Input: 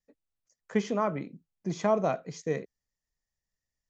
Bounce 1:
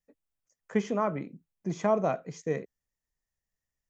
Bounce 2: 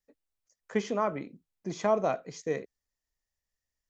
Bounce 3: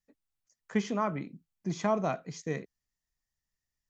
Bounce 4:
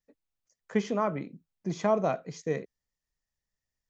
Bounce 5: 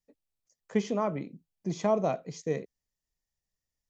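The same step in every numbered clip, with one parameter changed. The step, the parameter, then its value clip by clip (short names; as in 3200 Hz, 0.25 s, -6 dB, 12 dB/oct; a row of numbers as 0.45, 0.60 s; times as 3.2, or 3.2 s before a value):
bell, frequency: 4300, 160, 510, 13000, 1500 Hz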